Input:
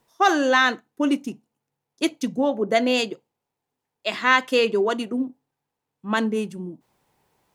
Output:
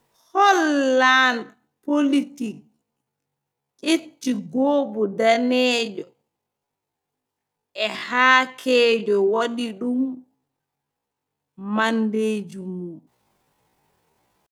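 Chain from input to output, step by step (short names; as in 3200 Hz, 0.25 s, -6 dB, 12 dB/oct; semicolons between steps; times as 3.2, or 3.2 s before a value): tempo 0.52×; gain +1.5 dB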